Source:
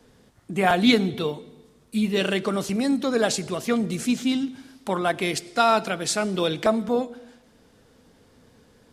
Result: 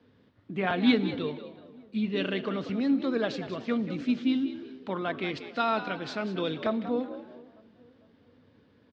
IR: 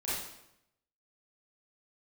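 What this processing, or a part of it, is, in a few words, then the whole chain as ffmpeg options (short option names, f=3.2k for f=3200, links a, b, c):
frequency-shifting delay pedal into a guitar cabinet: -filter_complex "[0:a]lowpass=8.2k,asplit=4[a][b][c][d];[b]adelay=188,afreqshift=68,volume=-12dB[e];[c]adelay=376,afreqshift=136,volume=-22.2dB[f];[d]adelay=564,afreqshift=204,volume=-32.3dB[g];[a][e][f][g]amix=inputs=4:normalize=0,highpass=83,equalizer=f=98:t=q:w=4:g=7,equalizer=f=270:t=q:w=4:g=5,equalizer=f=760:t=q:w=4:g=-5,lowpass=f=4k:w=0.5412,lowpass=f=4k:w=1.3066,asplit=2[h][i];[i]adelay=451,lowpass=f=1.3k:p=1,volume=-23dB,asplit=2[j][k];[k]adelay=451,lowpass=f=1.3k:p=1,volume=0.5,asplit=2[l][m];[m]adelay=451,lowpass=f=1.3k:p=1,volume=0.5[n];[h][j][l][n]amix=inputs=4:normalize=0,volume=-7dB"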